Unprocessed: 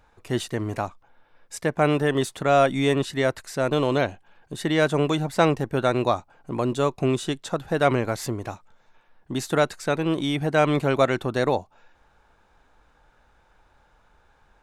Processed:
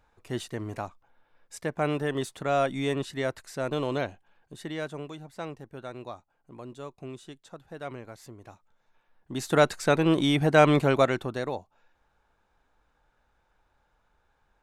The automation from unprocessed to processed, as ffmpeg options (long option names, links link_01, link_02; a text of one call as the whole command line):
ffmpeg -i in.wav -af "volume=12.5dB,afade=type=out:start_time=3.98:duration=1.13:silence=0.281838,afade=type=in:start_time=8.35:duration=0.97:silence=0.281838,afade=type=in:start_time=9.32:duration=0.36:silence=0.375837,afade=type=out:start_time=10.64:duration=0.82:silence=0.266073" out.wav